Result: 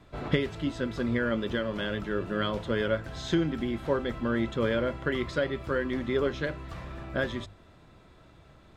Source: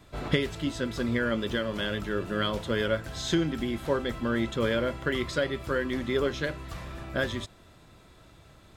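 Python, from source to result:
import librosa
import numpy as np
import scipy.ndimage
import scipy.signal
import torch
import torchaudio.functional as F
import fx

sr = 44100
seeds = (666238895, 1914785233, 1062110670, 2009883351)

y = fx.lowpass(x, sr, hz=2600.0, slope=6)
y = fx.hum_notches(y, sr, base_hz=50, count=2)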